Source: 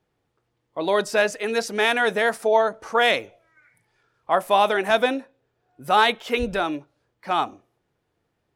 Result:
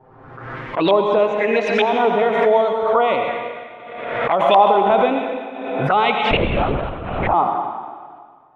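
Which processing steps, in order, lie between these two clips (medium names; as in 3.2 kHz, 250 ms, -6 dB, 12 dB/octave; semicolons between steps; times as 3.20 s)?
in parallel at -1 dB: peak limiter -12 dBFS, peak gain reduction 6.5 dB; on the sum: thinning echo 119 ms, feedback 35%, level -11 dB; touch-sensitive flanger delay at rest 7.7 ms, full sweep at -15.5 dBFS; LFO low-pass saw up 1.1 Hz 910–3000 Hz; on a send at -4 dB: reverberation RT60 1.8 s, pre-delay 73 ms; 6.31–7.34 s: on the sum: LPC vocoder at 8 kHz whisper; swell ahead of each attack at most 43 dB/s; trim -1 dB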